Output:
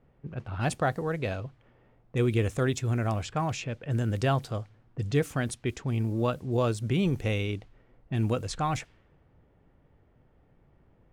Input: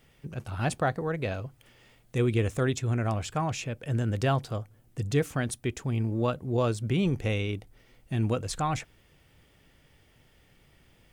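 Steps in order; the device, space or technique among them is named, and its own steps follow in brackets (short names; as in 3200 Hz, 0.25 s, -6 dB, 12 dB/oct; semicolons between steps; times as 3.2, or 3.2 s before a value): cassette deck with a dynamic noise filter (white noise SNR 34 dB; low-pass opened by the level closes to 860 Hz, open at -25 dBFS)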